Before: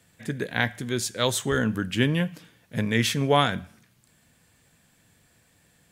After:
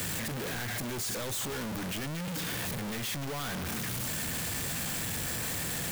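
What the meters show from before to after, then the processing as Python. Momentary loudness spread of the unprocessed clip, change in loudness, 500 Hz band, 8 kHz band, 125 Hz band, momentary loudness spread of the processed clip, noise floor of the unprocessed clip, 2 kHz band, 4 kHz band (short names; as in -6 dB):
11 LU, -7.5 dB, -11.5 dB, +1.5 dB, -8.0 dB, 3 LU, -63 dBFS, -7.0 dB, -6.0 dB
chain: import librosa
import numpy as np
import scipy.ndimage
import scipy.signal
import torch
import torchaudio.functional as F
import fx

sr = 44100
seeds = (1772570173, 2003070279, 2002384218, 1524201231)

y = np.sign(x) * np.sqrt(np.mean(np.square(x)))
y = fx.high_shelf(y, sr, hz=12000.0, db=5.5)
y = y * 10.0 ** (-7.5 / 20.0)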